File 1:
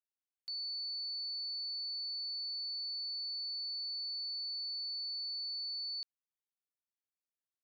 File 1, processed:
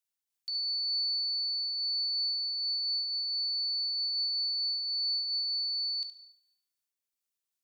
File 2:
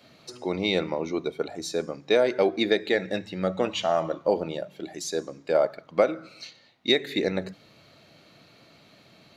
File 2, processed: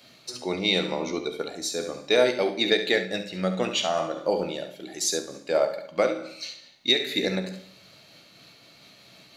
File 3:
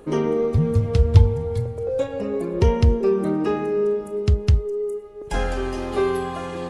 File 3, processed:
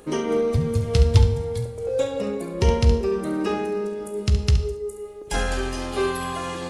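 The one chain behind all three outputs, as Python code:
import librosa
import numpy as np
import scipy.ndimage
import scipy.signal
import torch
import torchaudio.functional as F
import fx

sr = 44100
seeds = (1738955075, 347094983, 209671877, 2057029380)

y = fx.high_shelf(x, sr, hz=2400.0, db=10.5)
y = fx.room_early_taps(y, sr, ms=(16, 69), db=(-11.5, -9.0))
y = fx.rev_schroeder(y, sr, rt60_s=0.74, comb_ms=32, drr_db=10.5)
y = fx.am_noise(y, sr, seeds[0], hz=5.7, depth_pct=50)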